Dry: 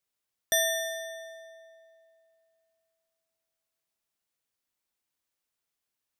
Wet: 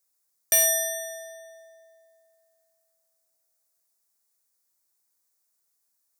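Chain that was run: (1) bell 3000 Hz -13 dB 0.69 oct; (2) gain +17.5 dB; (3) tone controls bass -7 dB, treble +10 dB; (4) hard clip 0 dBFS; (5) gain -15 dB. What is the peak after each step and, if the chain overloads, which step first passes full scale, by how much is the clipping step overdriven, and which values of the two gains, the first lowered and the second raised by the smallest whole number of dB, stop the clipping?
-14.5, +3.0, +9.0, 0.0, -15.0 dBFS; step 2, 9.0 dB; step 2 +8.5 dB, step 5 -6 dB

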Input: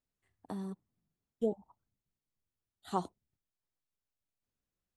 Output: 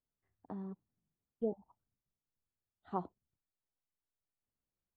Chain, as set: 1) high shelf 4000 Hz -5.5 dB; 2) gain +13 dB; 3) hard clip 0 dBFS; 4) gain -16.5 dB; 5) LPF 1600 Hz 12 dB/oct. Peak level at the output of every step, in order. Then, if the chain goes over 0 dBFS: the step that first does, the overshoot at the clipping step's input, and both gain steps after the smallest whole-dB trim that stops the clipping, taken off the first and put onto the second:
-18.5, -5.5, -5.5, -22.0, -22.5 dBFS; no overload

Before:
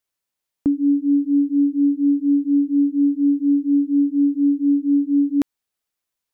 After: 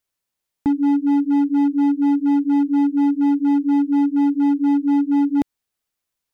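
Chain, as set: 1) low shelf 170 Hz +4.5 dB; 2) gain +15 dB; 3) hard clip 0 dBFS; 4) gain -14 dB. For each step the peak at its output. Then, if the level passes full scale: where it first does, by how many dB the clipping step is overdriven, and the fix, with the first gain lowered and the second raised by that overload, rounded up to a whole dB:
-9.5, +5.5, 0.0, -14.0 dBFS; step 2, 5.5 dB; step 2 +9 dB, step 4 -8 dB

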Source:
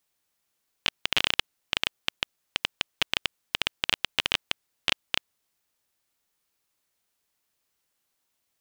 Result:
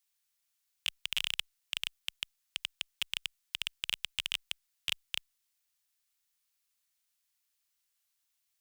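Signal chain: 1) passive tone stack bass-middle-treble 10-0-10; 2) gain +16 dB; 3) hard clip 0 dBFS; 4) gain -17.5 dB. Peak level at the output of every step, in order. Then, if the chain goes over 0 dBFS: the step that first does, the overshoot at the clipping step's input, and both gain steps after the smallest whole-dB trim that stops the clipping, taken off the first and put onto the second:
-8.0, +8.0, 0.0, -17.5 dBFS; step 2, 8.0 dB; step 2 +8 dB, step 4 -9.5 dB

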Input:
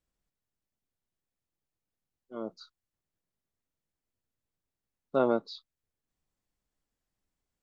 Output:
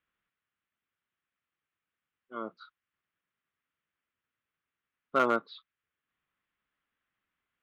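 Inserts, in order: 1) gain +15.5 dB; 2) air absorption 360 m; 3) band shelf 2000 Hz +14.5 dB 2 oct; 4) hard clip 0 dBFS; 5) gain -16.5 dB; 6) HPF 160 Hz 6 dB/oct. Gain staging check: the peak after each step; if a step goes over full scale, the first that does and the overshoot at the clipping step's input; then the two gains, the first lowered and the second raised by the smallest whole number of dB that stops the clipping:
+2.5, +1.0, +6.5, 0.0, -16.5, -14.5 dBFS; step 1, 6.5 dB; step 1 +8.5 dB, step 5 -9.5 dB

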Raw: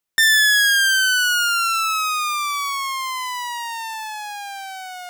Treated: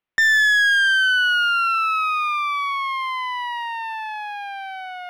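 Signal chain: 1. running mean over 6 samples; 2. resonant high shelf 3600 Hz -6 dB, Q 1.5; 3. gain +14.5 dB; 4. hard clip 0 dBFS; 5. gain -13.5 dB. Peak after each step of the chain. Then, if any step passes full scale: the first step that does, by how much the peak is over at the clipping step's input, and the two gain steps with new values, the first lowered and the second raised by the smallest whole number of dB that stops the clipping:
-11.0, -11.0, +3.5, 0.0, -13.5 dBFS; step 3, 3.5 dB; step 3 +10.5 dB, step 5 -9.5 dB

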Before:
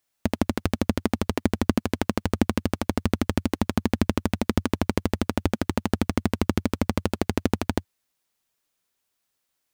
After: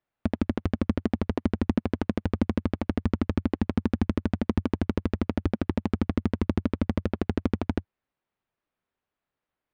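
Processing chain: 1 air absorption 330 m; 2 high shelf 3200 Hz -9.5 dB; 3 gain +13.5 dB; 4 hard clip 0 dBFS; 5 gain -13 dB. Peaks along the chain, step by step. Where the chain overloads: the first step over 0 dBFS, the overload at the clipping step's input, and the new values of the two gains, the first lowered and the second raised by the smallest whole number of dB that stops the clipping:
-5.0, -5.0, +8.5, 0.0, -13.0 dBFS; step 3, 8.5 dB; step 3 +4.5 dB, step 5 -4 dB

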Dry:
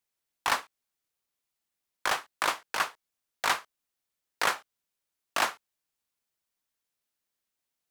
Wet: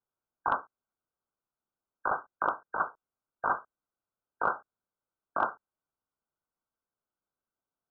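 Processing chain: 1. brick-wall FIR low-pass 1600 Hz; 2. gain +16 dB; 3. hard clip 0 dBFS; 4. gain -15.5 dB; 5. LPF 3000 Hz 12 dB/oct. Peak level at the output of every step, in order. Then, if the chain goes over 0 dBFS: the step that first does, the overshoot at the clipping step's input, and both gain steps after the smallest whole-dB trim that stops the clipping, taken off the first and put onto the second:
-12.5, +3.5, 0.0, -15.5, -15.0 dBFS; step 2, 3.5 dB; step 2 +12 dB, step 4 -11.5 dB

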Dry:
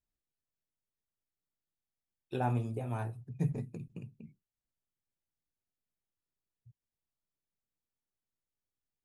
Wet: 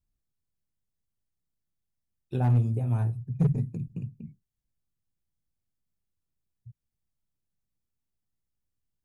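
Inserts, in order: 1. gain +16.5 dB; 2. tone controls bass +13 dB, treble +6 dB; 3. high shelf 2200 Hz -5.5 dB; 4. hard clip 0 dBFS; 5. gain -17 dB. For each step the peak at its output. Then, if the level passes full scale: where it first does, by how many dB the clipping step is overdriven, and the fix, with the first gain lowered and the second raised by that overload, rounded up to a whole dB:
-2.5, +6.0, +6.0, 0.0, -17.0 dBFS; step 2, 6.0 dB; step 1 +10.5 dB, step 5 -11 dB

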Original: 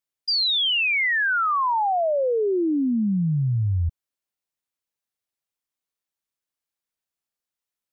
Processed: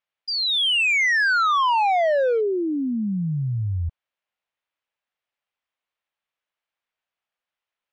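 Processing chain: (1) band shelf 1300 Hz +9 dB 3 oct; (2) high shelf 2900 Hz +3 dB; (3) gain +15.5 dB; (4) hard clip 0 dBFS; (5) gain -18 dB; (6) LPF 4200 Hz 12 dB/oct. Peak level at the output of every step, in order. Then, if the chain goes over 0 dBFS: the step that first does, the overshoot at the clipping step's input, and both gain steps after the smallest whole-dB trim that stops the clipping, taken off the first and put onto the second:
-9.5, -8.5, +7.0, 0.0, -18.0, -17.0 dBFS; step 3, 7.0 dB; step 3 +8.5 dB, step 5 -11 dB

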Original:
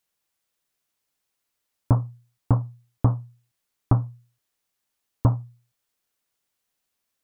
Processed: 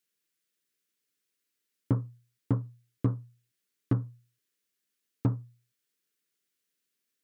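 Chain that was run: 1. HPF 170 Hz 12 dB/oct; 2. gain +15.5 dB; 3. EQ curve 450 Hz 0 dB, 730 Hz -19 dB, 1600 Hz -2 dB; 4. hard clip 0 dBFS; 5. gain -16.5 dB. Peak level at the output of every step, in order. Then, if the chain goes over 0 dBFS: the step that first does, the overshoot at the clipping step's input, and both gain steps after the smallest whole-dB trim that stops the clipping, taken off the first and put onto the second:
-8.0, +7.5, +4.5, 0.0, -16.5 dBFS; step 2, 4.5 dB; step 2 +10.5 dB, step 5 -11.5 dB

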